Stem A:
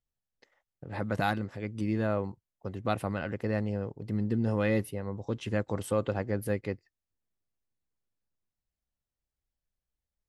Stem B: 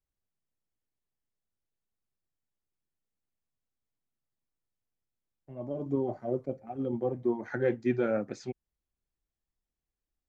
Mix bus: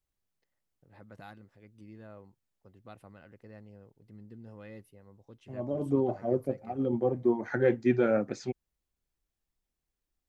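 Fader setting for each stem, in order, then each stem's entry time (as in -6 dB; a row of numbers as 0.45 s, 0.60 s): -20.0 dB, +3.0 dB; 0.00 s, 0.00 s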